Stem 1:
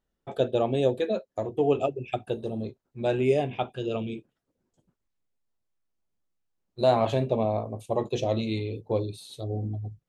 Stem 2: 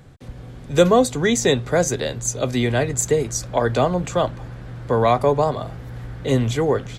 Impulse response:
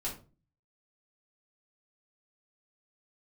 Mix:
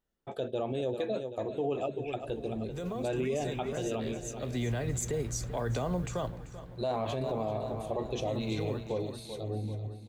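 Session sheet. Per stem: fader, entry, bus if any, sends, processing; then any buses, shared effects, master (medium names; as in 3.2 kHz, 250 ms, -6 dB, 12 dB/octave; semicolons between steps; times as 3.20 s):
-3.0 dB, 0.00 s, no send, echo send -12.5 dB, bass shelf 140 Hz -11 dB
-9.5 dB, 2.00 s, no send, echo send -18.5 dB, peak limiter -11.5 dBFS, peak gain reduction 9 dB; modulation noise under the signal 32 dB; auto duck -10 dB, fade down 0.80 s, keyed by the first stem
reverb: none
echo: feedback delay 387 ms, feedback 52%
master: bass shelf 140 Hz +8.5 dB; peak limiter -23.5 dBFS, peak gain reduction 9.5 dB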